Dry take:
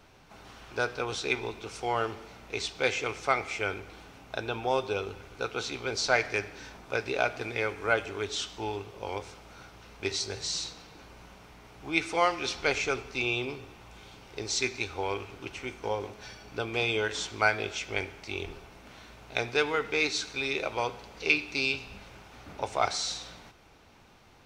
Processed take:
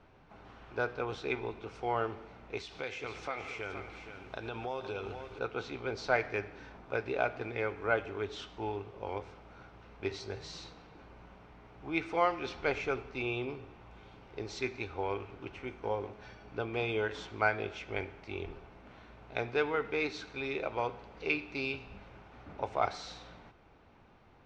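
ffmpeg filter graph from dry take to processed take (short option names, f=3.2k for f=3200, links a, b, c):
-filter_complex "[0:a]asettb=1/sr,asplit=3[a][b][c];[a]atrim=end=2.574[d];[b]atrim=start=2.57:end=5.39,asetpts=PTS-STARTPTS,afade=t=in:d=0.004:c=qsin,afade=t=out:st=2.816:d=0.004:c=qsin,highshelf=f=2.4k:g=10,acompressor=threshold=-32dB:ratio=3:attack=3.2:release=140:knee=1:detection=peak,aecho=1:1:472:0.355,atrim=end_sample=124362[e];[c]atrim=start=5.386[f];[d][e]acrossfade=d=0.004:c1=hsin:c2=qsin[g];[g][f]acrossfade=d=0.004:c1=qsin:c2=hsin,lowpass=f=2.1k:p=1,aemphasis=mode=reproduction:type=50fm,volume=-2.5dB"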